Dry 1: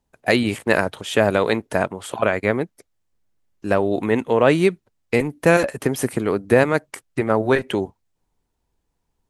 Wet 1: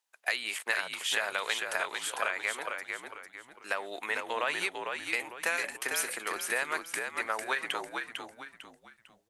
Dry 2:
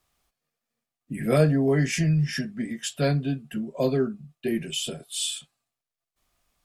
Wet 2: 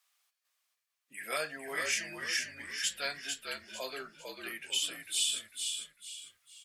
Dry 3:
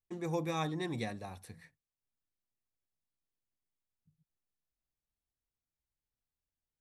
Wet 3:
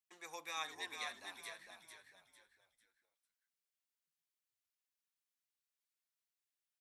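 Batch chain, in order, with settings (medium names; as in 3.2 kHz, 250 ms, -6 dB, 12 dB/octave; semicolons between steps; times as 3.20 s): high-pass 1.4 kHz 12 dB/octave; compression 6:1, threshold -27 dBFS; on a send: frequency-shifting echo 450 ms, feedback 34%, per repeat -61 Hz, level -5 dB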